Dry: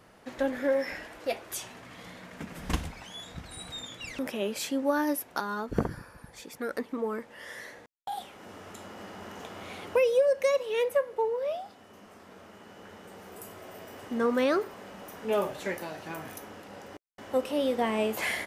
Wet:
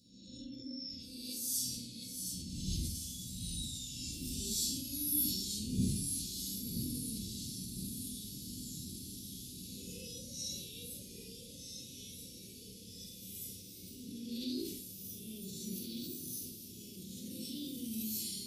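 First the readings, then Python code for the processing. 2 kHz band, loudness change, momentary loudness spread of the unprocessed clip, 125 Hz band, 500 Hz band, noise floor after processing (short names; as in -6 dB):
-26.0 dB, -9.0 dB, 19 LU, +0.5 dB, -27.0 dB, -52 dBFS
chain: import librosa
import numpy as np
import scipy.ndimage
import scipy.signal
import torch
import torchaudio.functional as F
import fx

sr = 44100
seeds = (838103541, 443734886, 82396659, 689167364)

y = fx.spec_swells(x, sr, rise_s=1.11)
y = fx.tone_stack(y, sr, knobs='5-5-5')
y = fx.spec_gate(y, sr, threshold_db=-25, keep='strong')
y = scipy.signal.sosfilt(scipy.signal.ellip(3, 1.0, 50, [300.0, 4400.0], 'bandstop', fs=sr, output='sos'), y)
y = fx.comb_fb(y, sr, f0_hz=390.0, decay_s=0.59, harmonics='all', damping=0.0, mix_pct=80)
y = fx.echo_diffused(y, sr, ms=1640, feedback_pct=67, wet_db=-9.5)
y = fx.echo_pitch(y, sr, ms=637, semitones=-1, count=3, db_per_echo=-6.0)
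y = scipy.signal.sosfilt(scipy.signal.butter(2, 61.0, 'highpass', fs=sr, output='sos'), y)
y = fx.doubler(y, sr, ms=48.0, db=-10.5)
y = fx.room_shoebox(y, sr, seeds[0], volume_m3=450.0, walls='furnished', distance_m=4.8)
y = fx.sustainer(y, sr, db_per_s=44.0)
y = y * librosa.db_to_amplitude(12.0)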